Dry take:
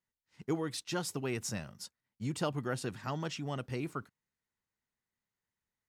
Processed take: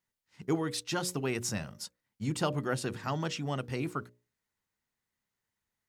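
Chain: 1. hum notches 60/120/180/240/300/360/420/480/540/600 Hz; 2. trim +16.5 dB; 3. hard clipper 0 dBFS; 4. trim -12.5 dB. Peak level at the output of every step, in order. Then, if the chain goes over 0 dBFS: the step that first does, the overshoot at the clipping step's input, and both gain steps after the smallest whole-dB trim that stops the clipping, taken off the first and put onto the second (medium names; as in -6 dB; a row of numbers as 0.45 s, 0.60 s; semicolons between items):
-21.5 dBFS, -5.0 dBFS, -5.0 dBFS, -17.5 dBFS; nothing clips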